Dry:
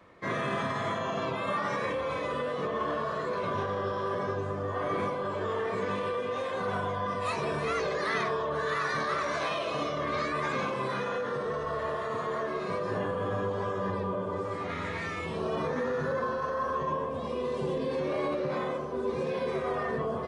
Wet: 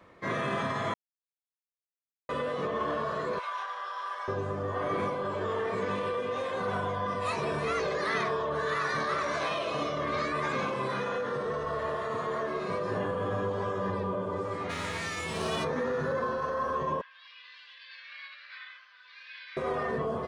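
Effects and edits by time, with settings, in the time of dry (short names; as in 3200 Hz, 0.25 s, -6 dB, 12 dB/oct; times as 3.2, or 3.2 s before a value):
0.94–2.29 mute
3.39–4.28 HPF 870 Hz 24 dB/oct
14.69–15.63 spectral whitening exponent 0.6
17.01–19.57 elliptic band-pass 1600–4700 Hz, stop band 70 dB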